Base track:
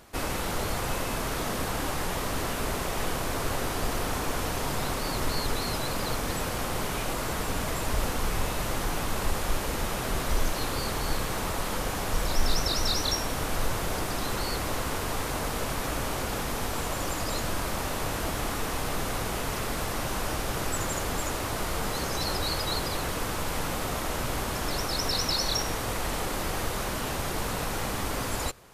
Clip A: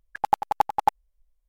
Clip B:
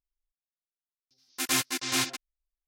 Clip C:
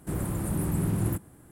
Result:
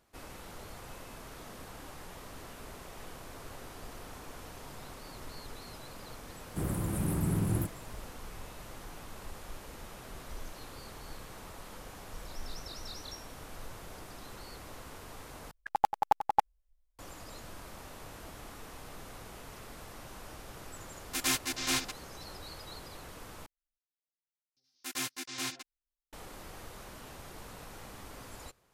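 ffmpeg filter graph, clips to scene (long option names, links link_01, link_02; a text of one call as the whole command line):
ffmpeg -i bed.wav -i cue0.wav -i cue1.wav -i cue2.wav -filter_complex "[2:a]asplit=2[link_01][link_02];[0:a]volume=-17dB,asplit=3[link_03][link_04][link_05];[link_03]atrim=end=15.514[link_06];[1:a]atrim=end=1.48,asetpts=PTS-STARTPTS,volume=-5dB[link_07];[link_04]atrim=start=16.986:end=23.464[link_08];[link_02]atrim=end=2.67,asetpts=PTS-STARTPTS,volume=-9.5dB[link_09];[link_05]atrim=start=26.126[link_10];[3:a]atrim=end=1.51,asetpts=PTS-STARTPTS,volume=-3dB,afade=type=in:duration=0.004:curve=hsin,afade=type=out:start_time=1.506:duration=0.004:curve=hsin,adelay=6490[link_11];[link_01]atrim=end=2.67,asetpts=PTS-STARTPTS,volume=-3.5dB,afade=type=in:duration=0.004:curve=hsin,afade=type=out:start_time=2.666:duration=0.004:curve=hsin,adelay=19750[link_12];[link_06][link_07]acrossfade=duration=0.004:curve1=hsin:curve2=hsin[link_13];[link_13][link_08]acrossfade=duration=0.004:curve1=hsin:curve2=hsin[link_14];[link_14][link_09]acrossfade=duration=0.004:curve1=hsin:curve2=hsin[link_15];[link_15][link_10]acrossfade=duration=0.004:curve1=hsin:curve2=hsin[link_16];[link_16][link_11][link_12]amix=inputs=3:normalize=0" out.wav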